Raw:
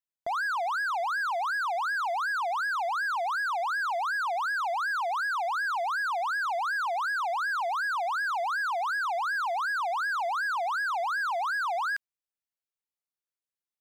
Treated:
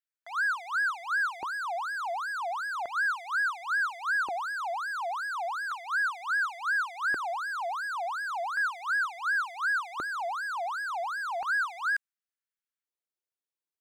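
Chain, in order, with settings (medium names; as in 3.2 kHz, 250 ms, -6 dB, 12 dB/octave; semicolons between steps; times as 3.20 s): LFO high-pass square 0.35 Hz 360–1500 Hz; dynamic bell 8.4 kHz, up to +6 dB, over -51 dBFS, Q 1.3; trim -5 dB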